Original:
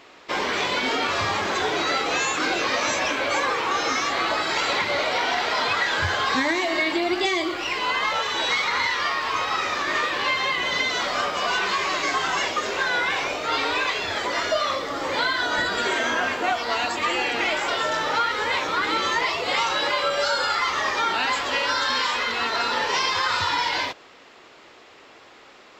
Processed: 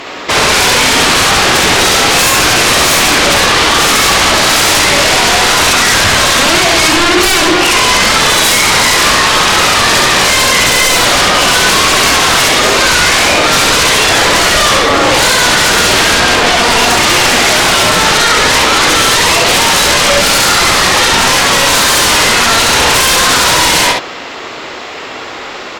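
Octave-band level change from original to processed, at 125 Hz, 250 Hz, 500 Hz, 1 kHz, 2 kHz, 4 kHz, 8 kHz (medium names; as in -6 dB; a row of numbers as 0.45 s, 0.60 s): +21.5 dB, +15.5 dB, +14.0 dB, +13.0 dB, +14.5 dB, +18.0 dB, +25.5 dB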